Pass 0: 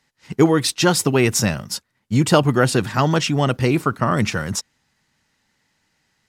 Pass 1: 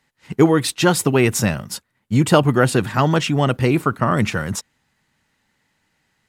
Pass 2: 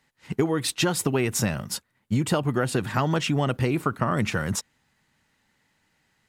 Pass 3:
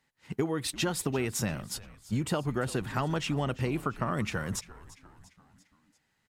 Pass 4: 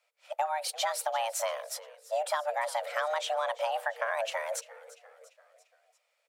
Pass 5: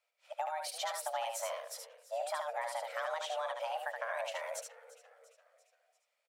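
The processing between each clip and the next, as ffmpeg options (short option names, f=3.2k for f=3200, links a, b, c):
-af "equalizer=f=5.4k:t=o:w=0.75:g=-6.5,volume=1dB"
-af "acompressor=threshold=-18dB:ratio=10,volume=-1.5dB"
-filter_complex "[0:a]asplit=5[a][b][c][d][e];[b]adelay=344,afreqshift=-98,volume=-18dB[f];[c]adelay=688,afreqshift=-196,volume=-23.5dB[g];[d]adelay=1032,afreqshift=-294,volume=-29dB[h];[e]adelay=1376,afreqshift=-392,volume=-34.5dB[i];[a][f][g][h][i]amix=inputs=5:normalize=0,volume=-6.5dB"
-af "afreqshift=450,volume=-1dB"
-af "aecho=1:1:74:0.596,volume=-7.5dB"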